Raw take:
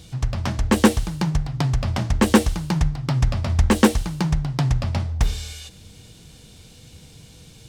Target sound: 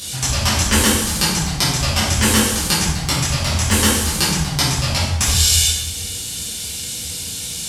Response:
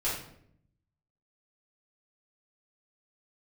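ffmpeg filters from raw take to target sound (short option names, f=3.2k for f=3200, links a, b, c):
-filter_complex "[0:a]highpass=61,acompressor=threshold=-26dB:ratio=6,crystalizer=i=10:c=0,acompressor=mode=upward:threshold=-33dB:ratio=2.5[a];[1:a]atrim=start_sample=2205,asetrate=26901,aresample=44100[b];[a][b]afir=irnorm=-1:irlink=0,volume=-3dB"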